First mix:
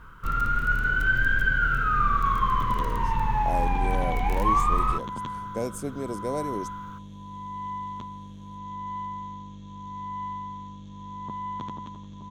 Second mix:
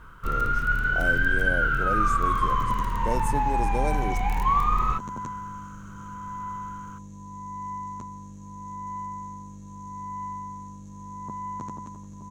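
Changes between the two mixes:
speech: entry -2.50 s; second sound: remove synth low-pass 3400 Hz, resonance Q 11

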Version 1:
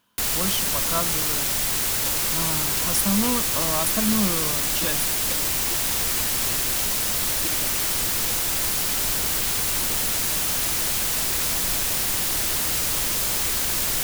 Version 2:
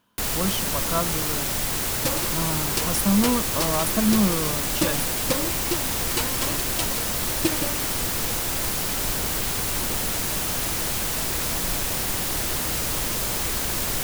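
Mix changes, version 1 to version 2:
second sound +10.0 dB; master: add tilt shelf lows +3.5 dB, about 1400 Hz

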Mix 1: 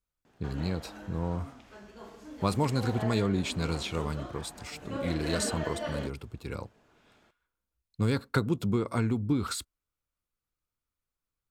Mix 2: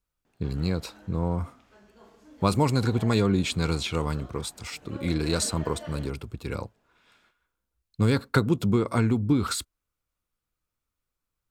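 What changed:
speech +5.0 dB; background -6.5 dB

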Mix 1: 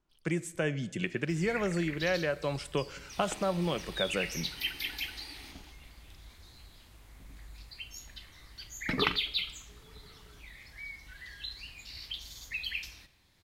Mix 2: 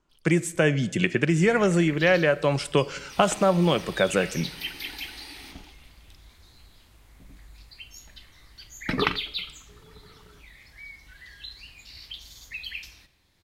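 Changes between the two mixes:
speech +10.0 dB; first sound +5.5 dB

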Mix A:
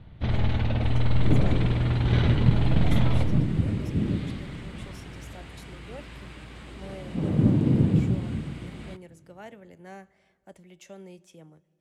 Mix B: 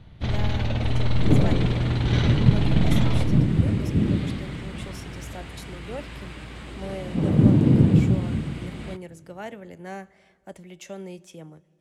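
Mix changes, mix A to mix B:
speech +7.5 dB; first sound: remove air absorption 180 m; second sound +4.5 dB

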